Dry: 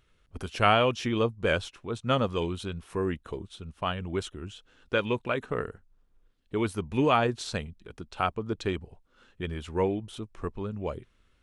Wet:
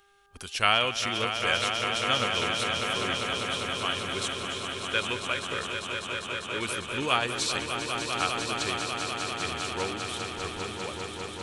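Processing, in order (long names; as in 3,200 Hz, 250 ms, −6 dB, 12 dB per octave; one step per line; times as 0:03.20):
hum with harmonics 400 Hz, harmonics 4, −59 dBFS
tilt shelving filter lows −10 dB, about 1,500 Hz
echo that builds up and dies away 199 ms, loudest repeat 5, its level −8 dB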